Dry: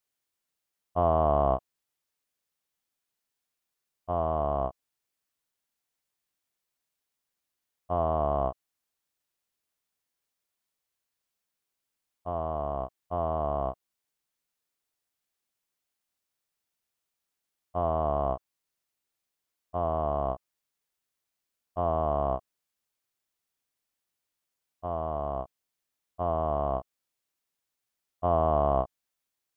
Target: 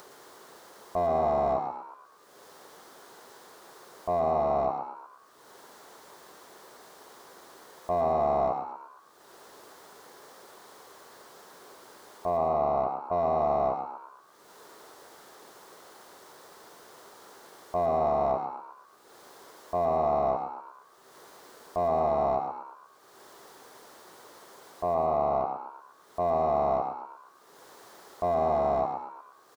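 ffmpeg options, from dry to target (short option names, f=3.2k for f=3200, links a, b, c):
-filter_complex "[0:a]asplit=2[a][b];[b]highpass=f=720:p=1,volume=25dB,asoftclip=type=tanh:threshold=-11dB[c];[a][c]amix=inputs=2:normalize=0,lowpass=f=1.1k:p=1,volume=-6dB,acompressor=mode=upward:threshold=-32dB:ratio=2.5,equalizer=f=160:t=o:w=0.67:g=3,equalizer=f=400:t=o:w=0.67:g=10,equalizer=f=1k:t=o:w=0.67:g=4,equalizer=f=2.5k:t=o:w=0.67:g=-11,alimiter=limit=-19dB:level=0:latency=1,asplit=2[d][e];[e]asplit=6[f][g][h][i][j][k];[f]adelay=117,afreqshift=89,volume=-7dB[l];[g]adelay=234,afreqshift=178,volume=-13.6dB[m];[h]adelay=351,afreqshift=267,volume=-20.1dB[n];[i]adelay=468,afreqshift=356,volume=-26.7dB[o];[j]adelay=585,afreqshift=445,volume=-33.2dB[p];[k]adelay=702,afreqshift=534,volume=-39.8dB[q];[l][m][n][o][p][q]amix=inputs=6:normalize=0[r];[d][r]amix=inputs=2:normalize=0"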